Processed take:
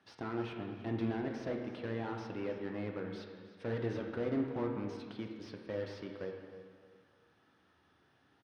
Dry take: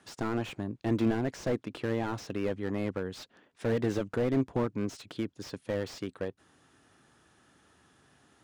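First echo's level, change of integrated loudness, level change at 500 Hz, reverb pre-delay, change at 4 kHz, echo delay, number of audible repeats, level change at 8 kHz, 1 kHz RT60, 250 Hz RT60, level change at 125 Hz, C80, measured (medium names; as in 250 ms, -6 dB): -16.0 dB, -6.5 dB, -6.0 dB, 8 ms, -8.0 dB, 314 ms, 2, under -15 dB, 1.8 s, 1.9 s, -7.0 dB, 5.0 dB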